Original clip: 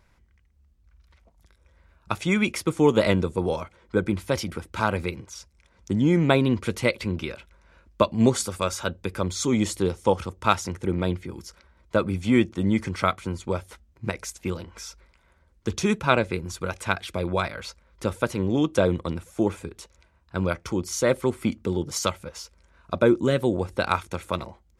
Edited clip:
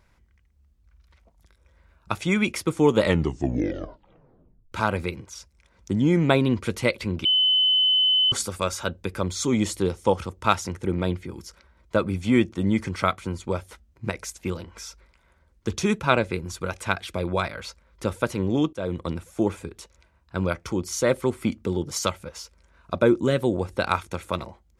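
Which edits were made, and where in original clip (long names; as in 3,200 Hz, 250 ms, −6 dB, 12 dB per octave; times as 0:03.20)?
0:02.98: tape stop 1.74 s
0:07.25–0:08.32: beep over 3,030 Hz −16.5 dBFS
0:18.73–0:19.07: fade in, from −21 dB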